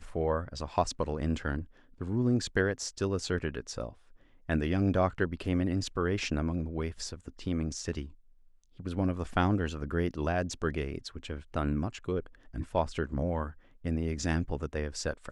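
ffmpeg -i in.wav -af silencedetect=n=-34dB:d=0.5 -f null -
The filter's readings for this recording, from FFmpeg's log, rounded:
silence_start: 3.89
silence_end: 4.49 | silence_duration: 0.61
silence_start: 8.04
silence_end: 8.80 | silence_duration: 0.76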